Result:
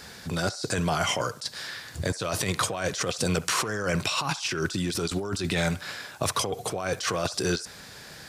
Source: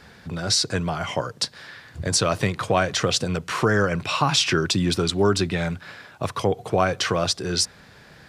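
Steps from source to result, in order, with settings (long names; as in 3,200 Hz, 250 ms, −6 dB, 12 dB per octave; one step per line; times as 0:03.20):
bass and treble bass −3 dB, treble +12 dB
compressor whose output falls as the input rises −26 dBFS, ratio −1
delay with a band-pass on its return 66 ms, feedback 34%, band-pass 1,200 Hz, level −16 dB
level −3 dB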